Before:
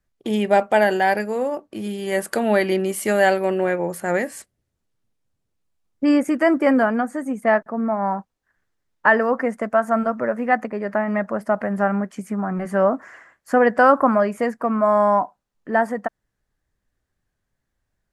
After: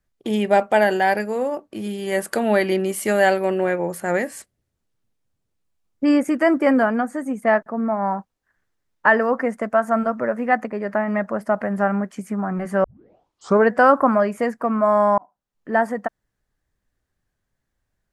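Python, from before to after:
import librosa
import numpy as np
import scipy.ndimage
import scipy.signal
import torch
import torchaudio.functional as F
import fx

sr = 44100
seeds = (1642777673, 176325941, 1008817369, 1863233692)

y = fx.edit(x, sr, fx.tape_start(start_s=12.84, length_s=0.87),
    fx.fade_in_span(start_s=15.18, length_s=0.55), tone=tone)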